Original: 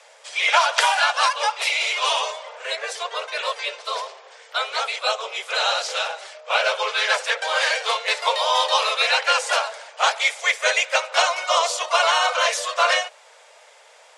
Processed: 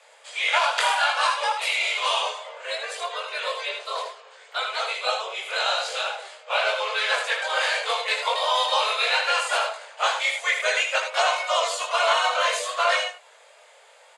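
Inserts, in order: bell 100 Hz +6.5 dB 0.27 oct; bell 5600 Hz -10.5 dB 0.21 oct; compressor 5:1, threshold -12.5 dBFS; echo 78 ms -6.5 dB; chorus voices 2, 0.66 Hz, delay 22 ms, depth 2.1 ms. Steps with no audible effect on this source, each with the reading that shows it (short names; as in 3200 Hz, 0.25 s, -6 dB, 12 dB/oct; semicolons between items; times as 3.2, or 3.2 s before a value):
bell 100 Hz: input band starts at 380 Hz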